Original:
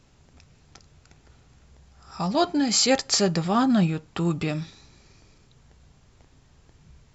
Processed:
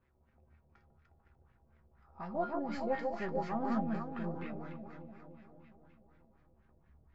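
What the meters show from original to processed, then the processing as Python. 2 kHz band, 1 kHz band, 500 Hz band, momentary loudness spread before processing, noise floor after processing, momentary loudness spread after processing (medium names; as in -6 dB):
-13.0 dB, -10.0 dB, -10.5 dB, 10 LU, -71 dBFS, 18 LU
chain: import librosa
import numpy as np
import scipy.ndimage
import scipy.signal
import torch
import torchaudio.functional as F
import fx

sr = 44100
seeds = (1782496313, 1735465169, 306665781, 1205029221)

y = np.where(x < 0.0, 10.0 ** (-7.0 / 20.0) * x, x)
y = fx.comb_fb(y, sr, f0_hz=74.0, decay_s=0.3, harmonics='odd', damping=0.0, mix_pct=80)
y = fx.echo_alternate(y, sr, ms=148, hz=1800.0, feedback_pct=77, wet_db=-3.0)
y = fx.filter_lfo_lowpass(y, sr, shape='sine', hz=4.1, low_hz=590.0, high_hz=2000.0, q=2.1)
y = y * 10.0 ** (-5.0 / 20.0)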